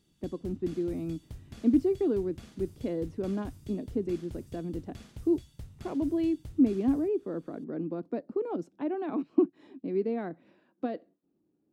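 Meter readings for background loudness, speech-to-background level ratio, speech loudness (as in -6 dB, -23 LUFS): -48.5 LUFS, 17.0 dB, -31.5 LUFS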